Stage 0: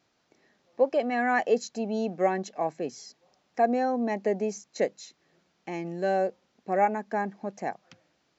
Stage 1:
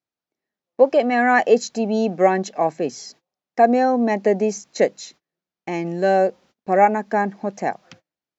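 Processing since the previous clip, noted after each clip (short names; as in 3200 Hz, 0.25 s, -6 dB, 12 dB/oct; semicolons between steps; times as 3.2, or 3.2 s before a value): gate -56 dBFS, range -30 dB; gain +9 dB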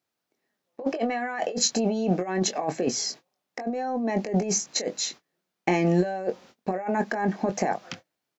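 low shelf 69 Hz -10.5 dB; negative-ratio compressor -27 dBFS, ratio -1; doubler 22 ms -9 dB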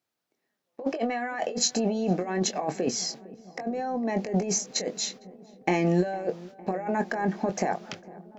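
darkening echo 0.456 s, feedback 79%, low-pass 1300 Hz, level -20 dB; gain -1.5 dB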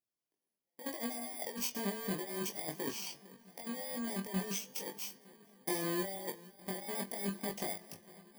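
FFT order left unsorted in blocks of 32 samples; chorus 0.38 Hz, delay 19 ms, depth 2.2 ms; de-hum 221.7 Hz, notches 30; gain -8 dB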